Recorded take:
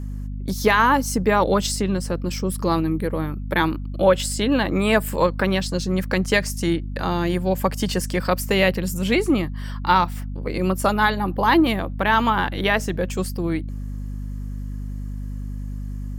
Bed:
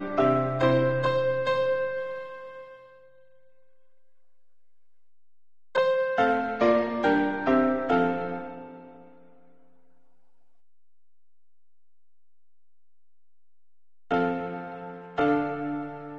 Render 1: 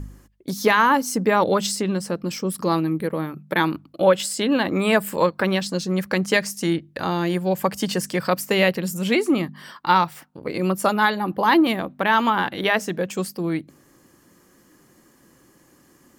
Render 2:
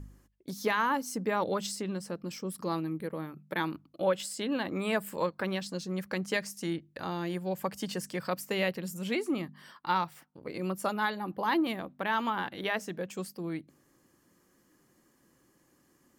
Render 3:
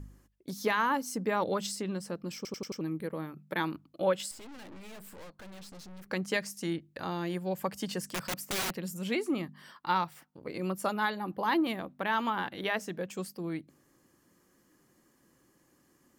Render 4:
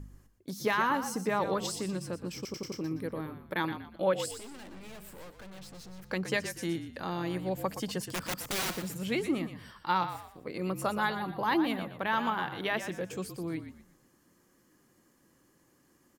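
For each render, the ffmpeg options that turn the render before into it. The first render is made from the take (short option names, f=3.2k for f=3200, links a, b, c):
-af "bandreject=f=50:t=h:w=4,bandreject=f=100:t=h:w=4,bandreject=f=150:t=h:w=4,bandreject=f=200:t=h:w=4,bandreject=f=250:t=h:w=4"
-af "volume=-11.5dB"
-filter_complex "[0:a]asettb=1/sr,asplit=3[a][b][c];[a]atrim=end=4.314[d];[b]atrim=start=4.31:end=6.1,asetpts=PTS-STARTPTS,afade=t=in:d=0.004:c=qsin,afade=t=out:st=1.786:d=0.004:c=qsin,aeval=exprs='(tanh(224*val(0)+0.8)-tanh(0.8))/224':c=same[e];[c]atrim=start=6.096[f];[d][e]acrossfade=d=0.004:c1=hsin:c2=qsin[g];[g][f]acrossfade=d=0.004:c1=qsin:c2=hsin,asettb=1/sr,asplit=3[h][i][j];[h]atrim=end=8.074[k];[i]atrim=start=8.07:end=8.76,asetpts=PTS-STARTPTS,afade=t=in:d=0.004:c=qsin,afade=t=out:st=0.686:d=0.004:c=qsin,aeval=exprs='(mod(23.7*val(0)+1,2)-1)/23.7':c=same[l];[j]atrim=start=8.756[m];[k][l]acrossfade=d=0.004:c1=hsin:c2=qsin[n];[n][m]acrossfade=d=0.004:c1=qsin:c2=hsin,asplit=6[o][p][q][r][s][t];[o]atrim=end=2.452[u];[p]atrim=start=2.358:end=2.452[v];[q]atrim=start=2.358:end=2.452[w];[r]atrim=start=2.358:end=2.452[x];[s]atrim=start=2.358:end=2.452[y];[t]atrim=start=2.808[z];[u][v]acrossfade=d=0.004:c1=hsin:c2=hsin[aa];[aa][w]acrossfade=d=0.004:c1=hsin:c2=hsin[ab];[ab][x]acrossfade=d=0.004:c1=hsin:c2=hsin[ac];[ac][y]acrossfade=d=0.004:c1=hsin:c2=hsin[ad];[ad][z]acrossfade=d=0.004:c1=hsin:c2=hsin"
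-filter_complex "[0:a]asplit=5[a][b][c][d][e];[b]adelay=120,afreqshift=-48,volume=-10dB[f];[c]adelay=240,afreqshift=-96,volume=-19.9dB[g];[d]adelay=360,afreqshift=-144,volume=-29.8dB[h];[e]adelay=480,afreqshift=-192,volume=-39.7dB[i];[a][f][g][h][i]amix=inputs=5:normalize=0"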